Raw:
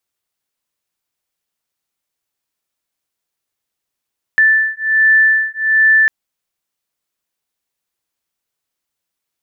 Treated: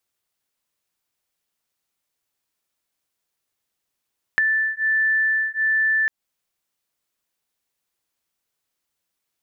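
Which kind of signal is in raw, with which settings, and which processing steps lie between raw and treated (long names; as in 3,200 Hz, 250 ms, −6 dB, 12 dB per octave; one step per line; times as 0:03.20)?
two tones that beat 1,760 Hz, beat 1.3 Hz, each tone −12.5 dBFS 1.70 s
downward compressor 6 to 1, threshold −19 dBFS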